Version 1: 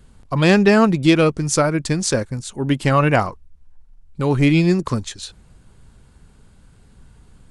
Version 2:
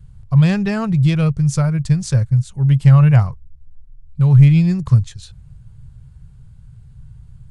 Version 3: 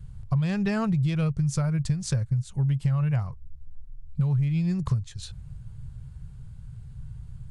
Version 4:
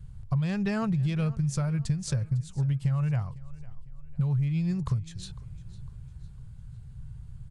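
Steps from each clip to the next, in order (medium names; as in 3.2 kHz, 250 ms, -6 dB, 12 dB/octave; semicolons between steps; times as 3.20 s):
resonant low shelf 190 Hz +14 dB, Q 3; trim -8 dB
compression 10:1, threshold -22 dBFS, peak gain reduction 17.5 dB
feedback delay 503 ms, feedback 42%, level -20 dB; trim -2.5 dB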